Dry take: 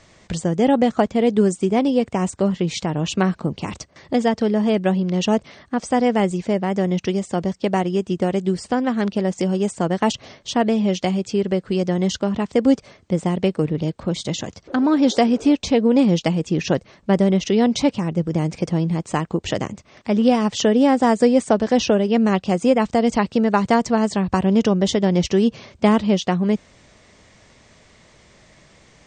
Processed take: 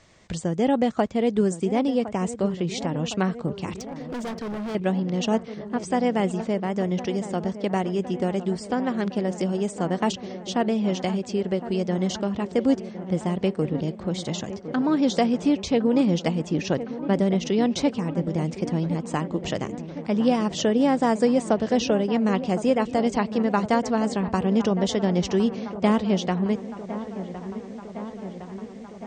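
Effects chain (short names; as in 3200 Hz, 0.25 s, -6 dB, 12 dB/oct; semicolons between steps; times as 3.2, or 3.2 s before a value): on a send: dark delay 1.061 s, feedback 72%, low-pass 1800 Hz, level -13 dB; 3.77–4.75 on the sum: overloaded stage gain 24 dB; gain -5 dB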